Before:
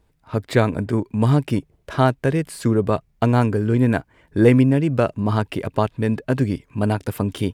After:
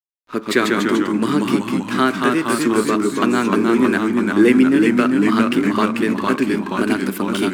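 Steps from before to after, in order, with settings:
high-pass filter 260 Hz 24 dB per octave
flat-topped bell 660 Hz −13 dB 1.2 octaves
in parallel at −2 dB: downward compressor, threshold −27 dBFS, peak gain reduction 12 dB
on the sum: dead-zone distortion −43.5 dBFS
convolution reverb RT60 1.6 s, pre-delay 7 ms, DRR 13.5 dB
delay with pitch and tempo change per echo 113 ms, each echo −1 semitone, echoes 3
one half of a high-frequency compander decoder only
level +4 dB

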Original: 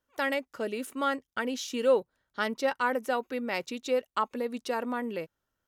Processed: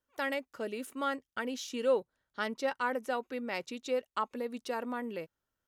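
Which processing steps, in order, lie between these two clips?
0:01.69–0:04.33: low-pass filter 12,000 Hz 12 dB per octave
level −4.5 dB

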